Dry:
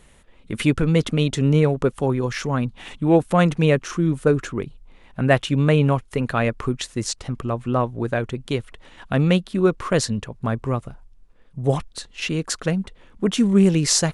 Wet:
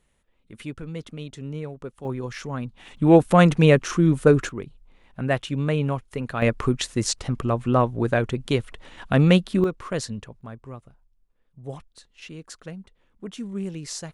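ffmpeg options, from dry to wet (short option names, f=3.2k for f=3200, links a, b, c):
-af "asetnsamples=n=441:p=0,asendcmd='2.05 volume volume -8dB;2.97 volume volume 2dB;4.49 volume volume -6.5dB;6.42 volume volume 1.5dB;9.64 volume volume -8dB;10.41 volume volume -15.5dB',volume=-16dB"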